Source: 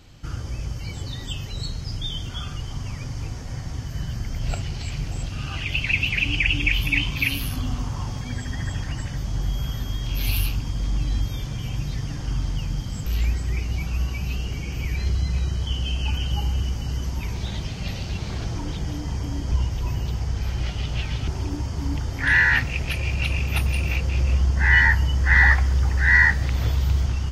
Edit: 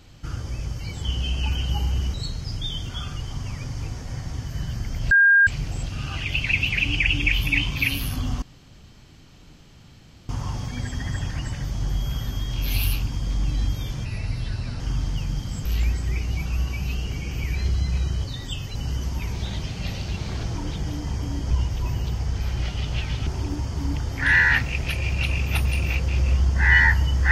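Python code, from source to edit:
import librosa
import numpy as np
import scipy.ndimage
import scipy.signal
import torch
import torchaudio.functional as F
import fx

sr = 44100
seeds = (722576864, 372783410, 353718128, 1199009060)

y = fx.edit(x, sr, fx.swap(start_s=1.03, length_s=0.51, other_s=15.65, other_length_s=1.11),
    fx.bleep(start_s=4.51, length_s=0.36, hz=1610.0, db=-11.5),
    fx.insert_room_tone(at_s=7.82, length_s=1.87),
    fx.speed_span(start_s=11.58, length_s=0.63, speed=0.84), tone=tone)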